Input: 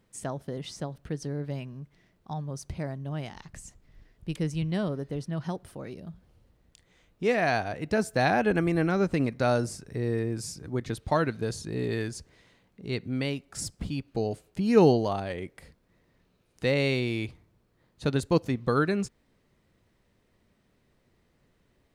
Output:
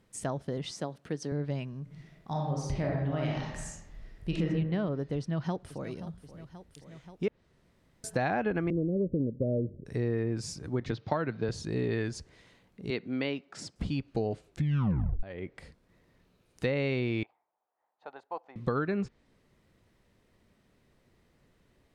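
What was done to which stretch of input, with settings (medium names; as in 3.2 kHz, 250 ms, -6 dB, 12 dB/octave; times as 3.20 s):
0.71–1.32 s: high-pass 190 Hz
1.82–4.47 s: reverb throw, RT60 0.94 s, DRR -3 dB
5.17–5.91 s: echo throw 530 ms, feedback 80%, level -15 dB
7.28–8.04 s: room tone
8.70–9.86 s: steep low-pass 580 Hz 72 dB/octave
10.91–11.49 s: elliptic band-pass 110–5200 Hz
12.90–13.76 s: band-pass 230–4100 Hz
14.46 s: tape stop 0.77 s
17.23–18.56 s: ladder band-pass 860 Hz, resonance 70%
whole clip: low-pass that closes with the level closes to 2.7 kHz, closed at -24.5 dBFS; compression 12:1, threshold -26 dBFS; trim +1 dB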